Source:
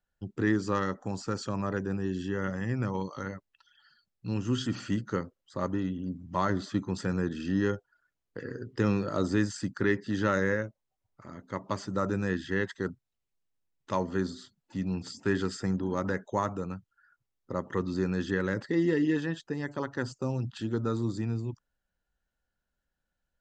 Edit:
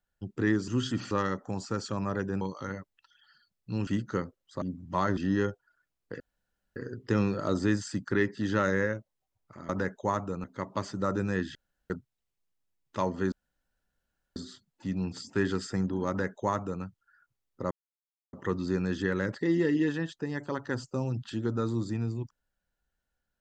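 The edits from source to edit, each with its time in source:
1.98–2.97 cut
4.43–4.86 move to 0.68
5.61–6.03 cut
6.58–7.42 cut
8.45 insert room tone 0.56 s
12.49–12.84 room tone
14.26 insert room tone 1.04 s
15.98–16.73 copy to 11.38
17.61 insert silence 0.62 s

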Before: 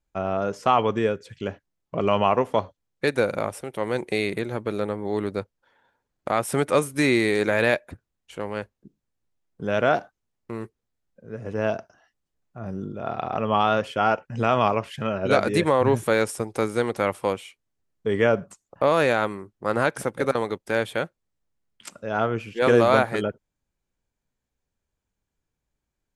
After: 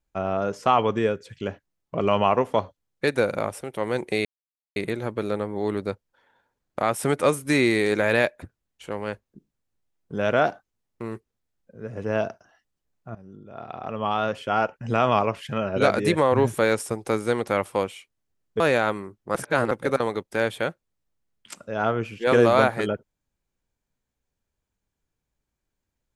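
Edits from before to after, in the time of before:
4.25 insert silence 0.51 s
12.64–14.43 fade in, from -17 dB
18.09–18.95 cut
19.7–20.06 reverse

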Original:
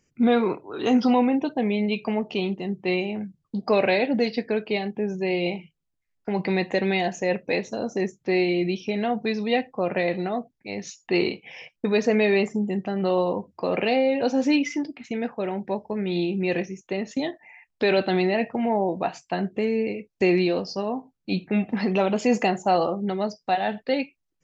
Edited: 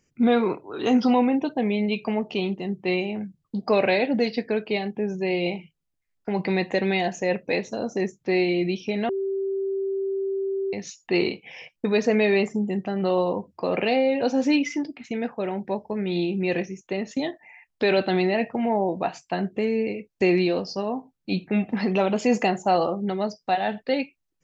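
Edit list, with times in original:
9.09–10.73 bleep 389 Hz -23.5 dBFS

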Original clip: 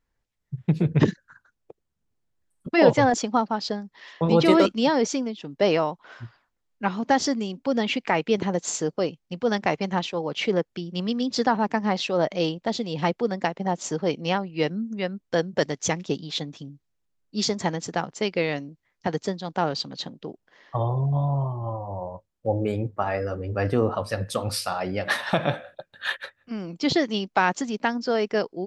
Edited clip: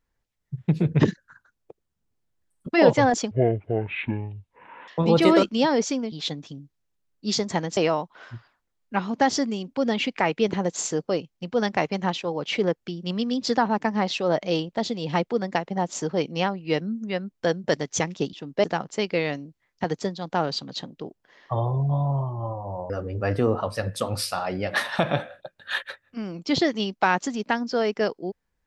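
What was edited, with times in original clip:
3.31–4.11 speed 51%
5.35–5.66 swap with 16.22–17.87
22.13–23.24 cut

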